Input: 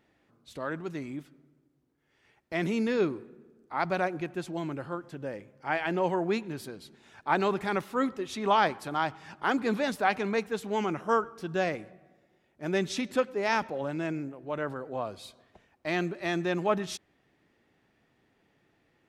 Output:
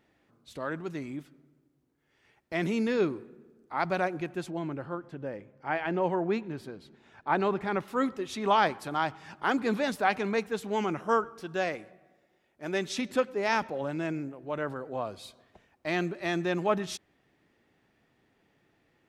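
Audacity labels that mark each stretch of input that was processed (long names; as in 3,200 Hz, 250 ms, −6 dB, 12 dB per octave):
4.500000	7.880000	low-pass filter 2,200 Hz 6 dB per octave
11.400000	12.990000	parametric band 110 Hz −7 dB 2.9 octaves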